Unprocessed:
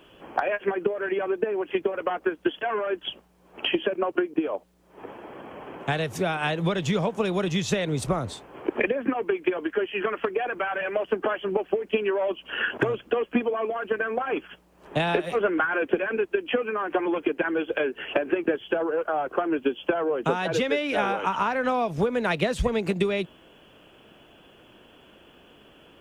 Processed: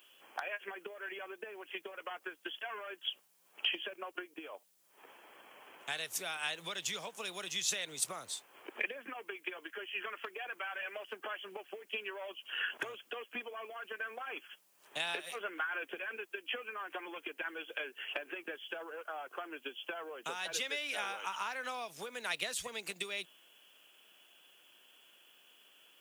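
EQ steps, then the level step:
first difference
+2.5 dB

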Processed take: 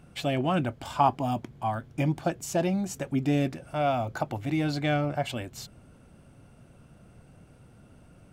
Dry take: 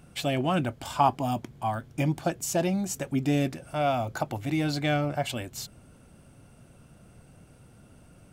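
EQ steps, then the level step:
high-shelf EQ 5,000 Hz −7.5 dB
0.0 dB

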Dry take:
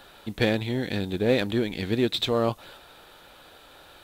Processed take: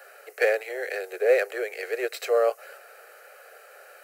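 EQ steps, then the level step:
Butterworth high-pass 400 Hz 72 dB per octave
phaser with its sweep stopped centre 960 Hz, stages 6
+5.0 dB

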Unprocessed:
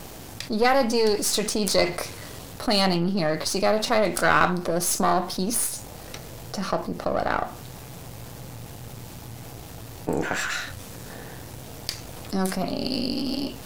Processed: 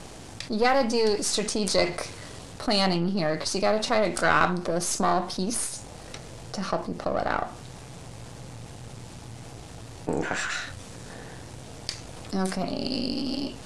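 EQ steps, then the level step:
Butterworth low-pass 10,000 Hz 36 dB per octave
−2.0 dB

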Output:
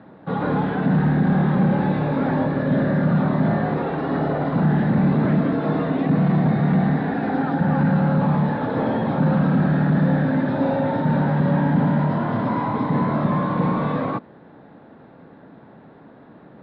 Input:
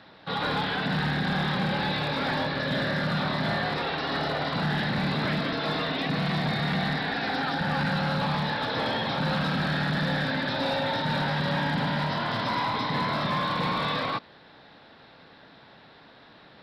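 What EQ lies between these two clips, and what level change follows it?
low-pass filter 1,500 Hz 12 dB per octave
parametric band 230 Hz +12 dB 2.8 octaves
0.0 dB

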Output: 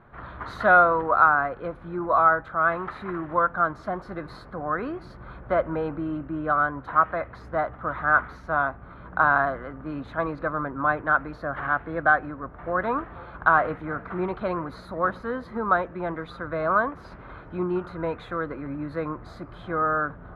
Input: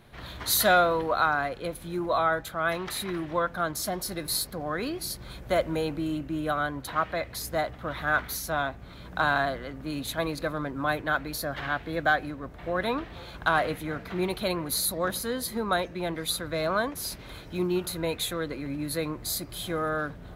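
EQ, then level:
low-pass with resonance 1,300 Hz, resonance Q 2.7
0.0 dB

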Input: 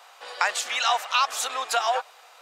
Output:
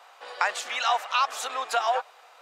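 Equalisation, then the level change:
high-shelf EQ 3,100 Hz −8 dB
mains-hum notches 50/100/150 Hz
0.0 dB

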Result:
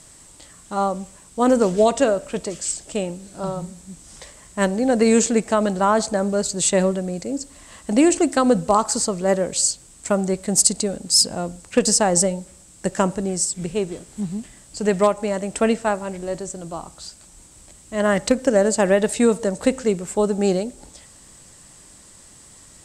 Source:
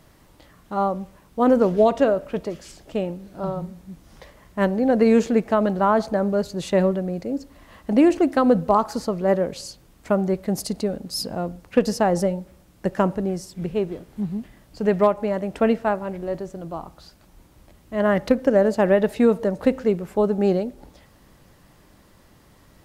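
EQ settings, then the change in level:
low-pass with resonance 8,000 Hz, resonance Q 7.8
high-shelf EQ 2,900 Hz +10 dB
0.0 dB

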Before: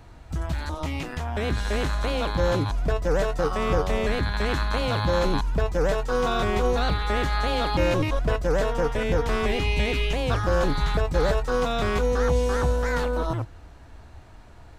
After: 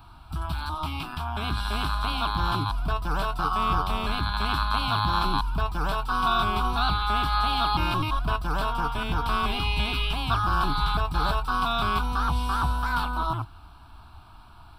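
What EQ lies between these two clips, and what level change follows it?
tilt shelving filter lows −7.5 dB, about 1,100 Hz
high shelf with overshoot 1,600 Hz −6 dB, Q 1.5
phaser with its sweep stopped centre 1,900 Hz, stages 6
+5.0 dB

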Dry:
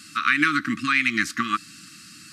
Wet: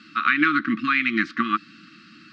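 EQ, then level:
loudspeaker in its box 140–3,900 Hz, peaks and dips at 220 Hz +6 dB, 340 Hz +7 dB, 950 Hz +7 dB, 1,400 Hz +3 dB
−1.5 dB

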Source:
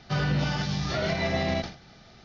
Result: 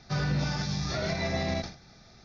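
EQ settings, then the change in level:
low-shelf EQ 130 Hz +4 dB
parametric band 5,900 Hz +6 dB 0.95 octaves
notch filter 3,000 Hz, Q 5.9
−4.0 dB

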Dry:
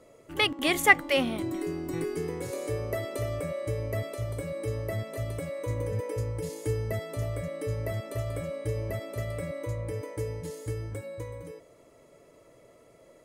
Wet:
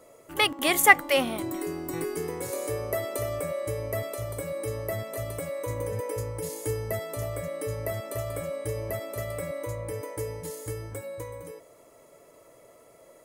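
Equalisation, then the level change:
parametric band 920 Hz +8 dB 2.3 octaves
high-shelf EQ 5,500 Hz +10 dB
high-shelf EQ 11,000 Hz +9 dB
−3.5 dB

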